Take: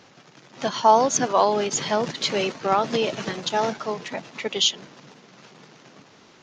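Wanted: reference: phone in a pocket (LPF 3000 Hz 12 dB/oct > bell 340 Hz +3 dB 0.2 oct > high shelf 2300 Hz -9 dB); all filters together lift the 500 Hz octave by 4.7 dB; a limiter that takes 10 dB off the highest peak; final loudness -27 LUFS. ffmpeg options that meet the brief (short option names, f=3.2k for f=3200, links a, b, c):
-af "equalizer=f=500:t=o:g=6.5,alimiter=limit=-11dB:level=0:latency=1,lowpass=3k,equalizer=f=340:t=o:w=0.2:g=3,highshelf=f=2.3k:g=-9,volume=-3dB"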